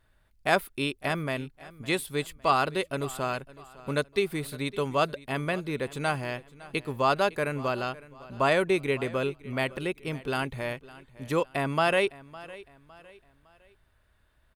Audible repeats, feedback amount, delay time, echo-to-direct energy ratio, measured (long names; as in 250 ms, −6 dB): 2, 38%, 558 ms, −19.0 dB